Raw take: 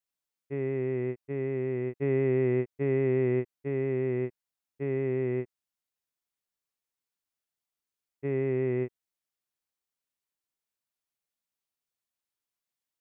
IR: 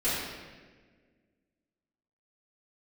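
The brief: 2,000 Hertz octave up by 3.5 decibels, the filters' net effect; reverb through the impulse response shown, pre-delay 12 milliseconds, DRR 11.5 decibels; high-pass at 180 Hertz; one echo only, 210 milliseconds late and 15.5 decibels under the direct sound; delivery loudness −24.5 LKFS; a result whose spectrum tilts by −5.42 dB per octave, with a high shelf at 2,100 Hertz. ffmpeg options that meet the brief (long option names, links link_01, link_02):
-filter_complex "[0:a]highpass=180,equalizer=frequency=2000:width_type=o:gain=7.5,highshelf=frequency=2100:gain=-7.5,aecho=1:1:210:0.168,asplit=2[link_01][link_02];[1:a]atrim=start_sample=2205,adelay=12[link_03];[link_02][link_03]afir=irnorm=-1:irlink=0,volume=-22.5dB[link_04];[link_01][link_04]amix=inputs=2:normalize=0,volume=6dB"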